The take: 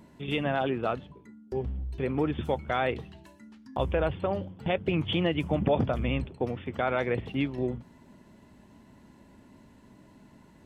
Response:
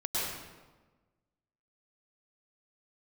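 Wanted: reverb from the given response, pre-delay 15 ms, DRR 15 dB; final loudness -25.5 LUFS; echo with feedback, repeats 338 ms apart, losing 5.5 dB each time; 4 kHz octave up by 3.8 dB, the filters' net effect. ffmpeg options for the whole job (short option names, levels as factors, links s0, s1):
-filter_complex "[0:a]equalizer=f=4000:t=o:g=5.5,aecho=1:1:338|676|1014|1352|1690|2028|2366:0.531|0.281|0.149|0.079|0.0419|0.0222|0.0118,asplit=2[s0][s1];[1:a]atrim=start_sample=2205,adelay=15[s2];[s1][s2]afir=irnorm=-1:irlink=0,volume=0.075[s3];[s0][s3]amix=inputs=2:normalize=0,volume=1.41"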